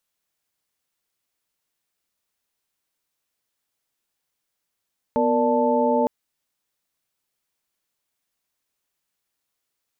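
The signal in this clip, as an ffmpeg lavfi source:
-f lavfi -i "aevalsrc='0.075*(sin(2*PI*246.94*t)+sin(2*PI*466.16*t)+sin(2*PI*587.33*t)+sin(2*PI*880*t))':d=0.91:s=44100"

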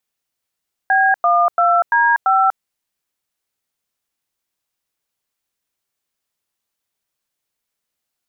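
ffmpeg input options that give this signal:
-f lavfi -i "aevalsrc='0.211*clip(min(mod(t,0.34),0.242-mod(t,0.34))/0.002,0,1)*(eq(floor(t/0.34),0)*(sin(2*PI*770*mod(t,0.34))+sin(2*PI*1633*mod(t,0.34)))+eq(floor(t/0.34),1)*(sin(2*PI*697*mod(t,0.34))+sin(2*PI*1209*mod(t,0.34)))+eq(floor(t/0.34),2)*(sin(2*PI*697*mod(t,0.34))+sin(2*PI*1336*mod(t,0.34)))+eq(floor(t/0.34),3)*(sin(2*PI*941*mod(t,0.34))+sin(2*PI*1633*mod(t,0.34)))+eq(floor(t/0.34),4)*(sin(2*PI*770*mod(t,0.34))+sin(2*PI*1336*mod(t,0.34))))':d=1.7:s=44100"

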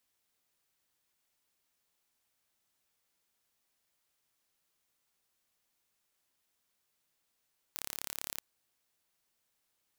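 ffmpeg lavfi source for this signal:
-f lavfi -i "aevalsrc='0.282*eq(mod(n,1253),0)':d=0.63:s=44100"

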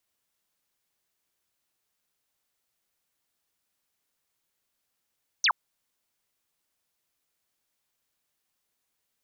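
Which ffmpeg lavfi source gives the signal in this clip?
-f lavfi -i "aevalsrc='0.112*clip(t/0.002,0,1)*clip((0.07-t)/0.002,0,1)*sin(2*PI*6500*0.07/log(830/6500)*(exp(log(830/6500)*t/0.07)-1))':d=0.07:s=44100"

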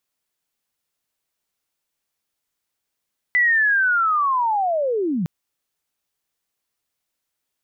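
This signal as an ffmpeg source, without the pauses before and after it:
-f lavfi -i "aevalsrc='pow(10,(-13.5-6*t/1.91)/20)*sin(2*PI*(2000*t-1850*t*t/(2*1.91)))':d=1.91:s=44100"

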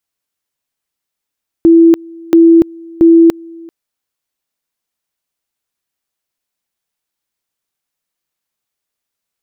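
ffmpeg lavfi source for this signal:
-f lavfi -i "aevalsrc='pow(10,(-2-26.5*gte(mod(t,0.68),0.29))/20)*sin(2*PI*332*t)':d=2.04:s=44100"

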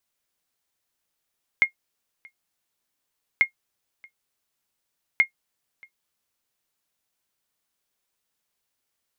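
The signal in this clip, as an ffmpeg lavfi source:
-f lavfi -i "aevalsrc='0.398*(sin(2*PI*2140*mod(t,1.79))*exp(-6.91*mod(t,1.79)/0.1)+0.0355*sin(2*PI*2140*max(mod(t,1.79)-0.63,0))*exp(-6.91*max(mod(t,1.79)-0.63,0)/0.1))':d=5.37:s=44100"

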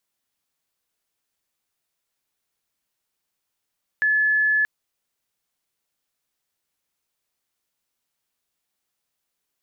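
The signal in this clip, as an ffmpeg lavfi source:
-f lavfi -i "sine=f=1720:d=0.63:r=44100,volume=1.56dB"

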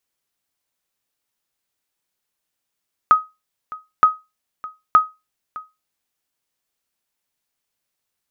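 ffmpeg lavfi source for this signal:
-f lavfi -i "aevalsrc='0.668*(sin(2*PI*1260*mod(t,0.92))*exp(-6.91*mod(t,0.92)/0.23)+0.1*sin(2*PI*1260*max(mod(t,0.92)-0.61,0))*exp(-6.91*max(mod(t,0.92)-0.61,0)/0.23))':d=2.76:s=44100"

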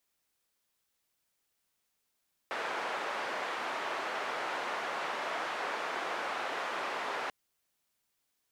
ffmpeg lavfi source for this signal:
-f lavfi -i "anoisesrc=c=white:d=4.79:r=44100:seed=1,highpass=f=510,lowpass=f=1400,volume=-17.8dB"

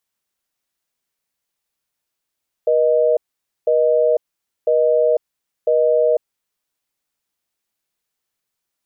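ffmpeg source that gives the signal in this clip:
-f lavfi -i "aevalsrc='0.178*(sin(2*PI*480*t)+sin(2*PI*620*t))*clip(min(mod(t,1),0.5-mod(t,1))/0.005,0,1)':d=3.67:s=44100"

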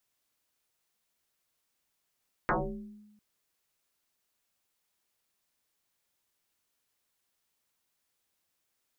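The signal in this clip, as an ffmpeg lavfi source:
-f lavfi -i "aevalsrc='0.075*pow(10,-3*t/1.08)*sin(2*PI*210*t+9.9*pow(10,-3*t/0.69)*sin(2*PI*0.85*210*t))':d=0.7:s=44100"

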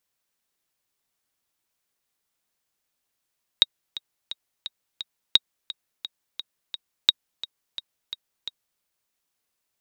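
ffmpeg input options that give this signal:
-f lavfi -i "aevalsrc='pow(10,(-1.5-17*gte(mod(t,5*60/173),60/173))/20)*sin(2*PI*3780*mod(t,60/173))*exp(-6.91*mod(t,60/173)/0.03)':d=5.2:s=44100"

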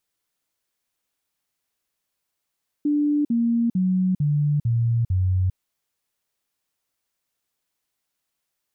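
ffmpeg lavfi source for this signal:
-f lavfi -i "aevalsrc='0.133*clip(min(mod(t,0.45),0.4-mod(t,0.45))/0.005,0,1)*sin(2*PI*294*pow(2,-floor(t/0.45)/3)*mod(t,0.45))':d=2.7:s=44100"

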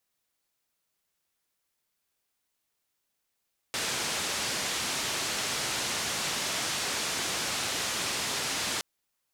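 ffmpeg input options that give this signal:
-f lavfi -i "anoisesrc=c=white:d=5.07:r=44100:seed=1,highpass=f=82,lowpass=f=6900,volume=-21.8dB"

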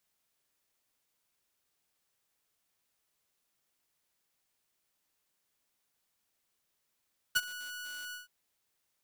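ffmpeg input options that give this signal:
-f lavfi -i "aevalsrc='0.1*(2*mod(1470*t,1)-1)':d=0.925:s=44100,afade=t=in:d=0.015,afade=t=out:st=0.015:d=0.039:silence=0.126,afade=t=out:st=0.78:d=0.145"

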